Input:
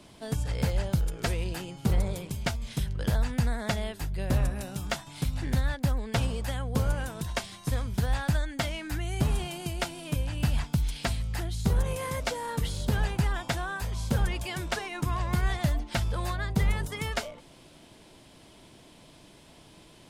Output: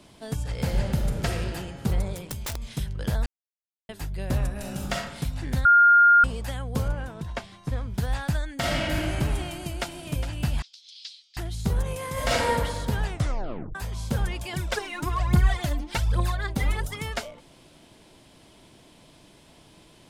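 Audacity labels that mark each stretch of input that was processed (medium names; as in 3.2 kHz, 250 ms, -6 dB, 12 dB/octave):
0.510000	1.310000	reverb throw, RT60 2.3 s, DRR 1 dB
2.140000	2.740000	integer overflow gain 25.5 dB
3.260000	3.890000	mute
4.510000	4.960000	reverb throw, RT60 0.89 s, DRR -0.5 dB
5.650000	6.240000	bleep 1.41 kHz -12 dBFS
6.880000	7.980000	low-pass 2 kHz 6 dB/octave
8.540000	8.940000	reverb throw, RT60 2.6 s, DRR -7 dB
9.470000	9.890000	echo throw 410 ms, feedback 50%, level -10 dB
10.620000	11.370000	Butterworth band-pass 4.4 kHz, Q 2
12.130000	12.530000	reverb throw, RT60 1.4 s, DRR -9 dB
13.070000	13.070000	tape stop 0.68 s
14.530000	16.960000	phaser 1.2 Hz, delay 4 ms, feedback 64%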